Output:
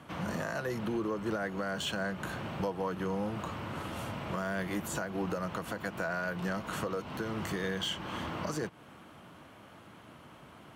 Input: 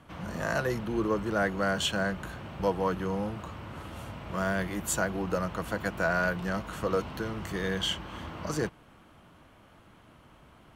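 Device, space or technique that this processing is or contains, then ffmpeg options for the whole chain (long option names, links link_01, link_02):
podcast mastering chain: -af "highpass=110,deesser=0.75,acompressor=threshold=-35dB:ratio=2.5,alimiter=level_in=4dB:limit=-24dB:level=0:latency=1:release=194,volume=-4dB,volume=4.5dB" -ar 48000 -c:a libmp3lame -b:a 112k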